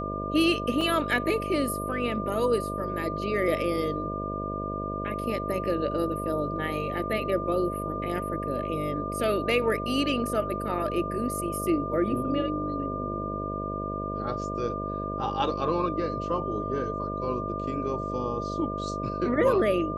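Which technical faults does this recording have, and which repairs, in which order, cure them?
mains buzz 50 Hz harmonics 13 −34 dBFS
whistle 1,200 Hz −33 dBFS
0:00.81: drop-out 3.3 ms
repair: hum removal 50 Hz, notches 13
notch filter 1,200 Hz, Q 30
repair the gap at 0:00.81, 3.3 ms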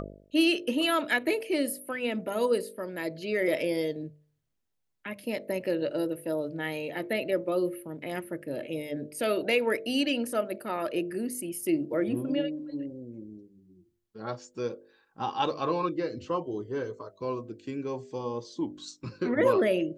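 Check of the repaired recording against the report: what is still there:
none of them is left

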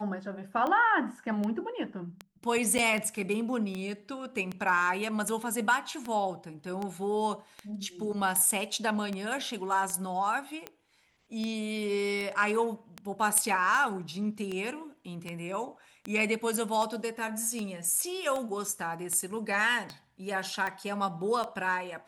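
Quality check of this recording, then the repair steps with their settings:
scratch tick 78 rpm −21 dBFS
0:02.78–0:02.79: drop-out 7.7 ms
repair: click removal
repair the gap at 0:02.78, 7.7 ms

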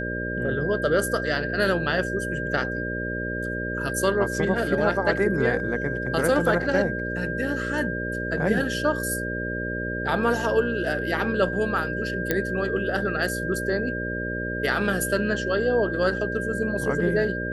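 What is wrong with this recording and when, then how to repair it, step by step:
mains buzz 60 Hz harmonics 10 −31 dBFS
whistle 1,600 Hz −30 dBFS
0:12.31: click −8 dBFS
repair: click removal
hum removal 60 Hz, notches 10
notch filter 1,600 Hz, Q 30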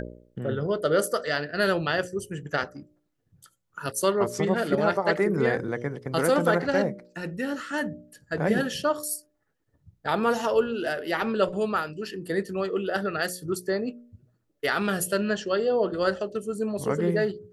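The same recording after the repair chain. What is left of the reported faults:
none of them is left

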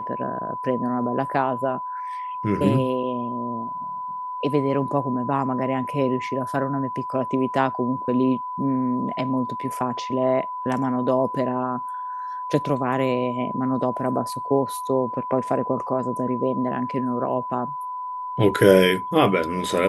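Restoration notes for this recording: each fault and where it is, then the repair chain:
whistle 1,000 Hz −28 dBFS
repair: notch filter 1,000 Hz, Q 30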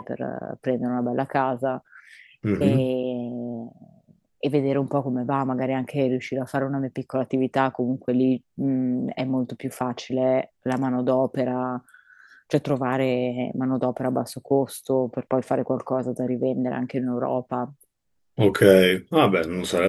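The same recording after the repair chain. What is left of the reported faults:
none of them is left

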